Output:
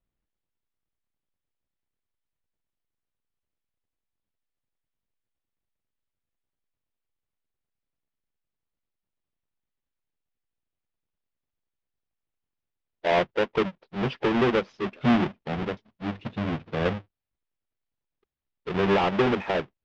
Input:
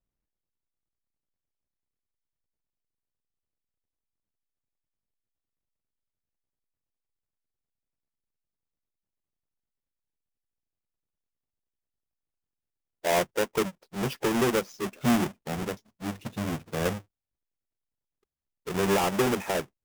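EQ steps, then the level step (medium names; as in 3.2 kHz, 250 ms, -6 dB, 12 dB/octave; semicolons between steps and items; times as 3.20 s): low-pass 3.8 kHz 24 dB/octave; +2.5 dB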